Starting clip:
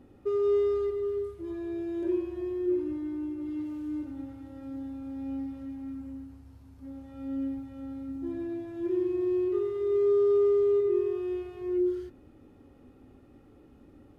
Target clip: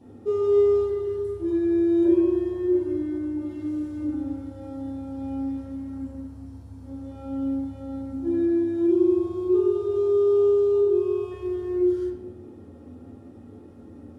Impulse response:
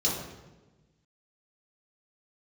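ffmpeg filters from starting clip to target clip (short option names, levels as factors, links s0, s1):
-filter_complex "[0:a]asettb=1/sr,asplit=3[s0][s1][s2];[s0]atrim=end=8.754[s3];[s1]atrim=start=8.75:end=11.31,asetpts=PTS-STARTPTS,afade=t=in:d=0.004:c=qsin,afade=t=out:st=2.556:d=0.004:c=qsin,asuperstop=centerf=1900:order=4:qfactor=2.9[s4];[s2]atrim=start=11.306[s5];[s3][s4]acrossfade=d=0.004:c1=hsin:c2=qsin[s6];[s6][s5]acrossfade=d=0.004:c1=qsin:c2=hsin[s7];[1:a]atrim=start_sample=2205,asetrate=61740,aresample=44100[s8];[s7][s8]afir=irnorm=-1:irlink=0,volume=0.841"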